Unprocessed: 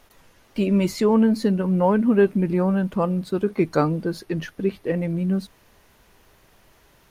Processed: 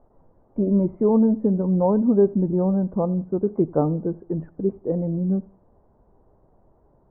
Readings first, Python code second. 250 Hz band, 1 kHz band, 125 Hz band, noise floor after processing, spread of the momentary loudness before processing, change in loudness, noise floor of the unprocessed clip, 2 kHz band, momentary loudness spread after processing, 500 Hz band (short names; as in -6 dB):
0.0 dB, -4.0 dB, 0.0 dB, -60 dBFS, 9 LU, 0.0 dB, -57 dBFS, under -20 dB, 9 LU, 0.0 dB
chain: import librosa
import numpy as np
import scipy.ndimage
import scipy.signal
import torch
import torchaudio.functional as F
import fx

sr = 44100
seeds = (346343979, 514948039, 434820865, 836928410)

p1 = scipy.signal.sosfilt(scipy.signal.cheby2(4, 70, 3800.0, 'lowpass', fs=sr, output='sos'), x)
y = p1 + fx.echo_feedback(p1, sr, ms=87, feedback_pct=34, wet_db=-23.5, dry=0)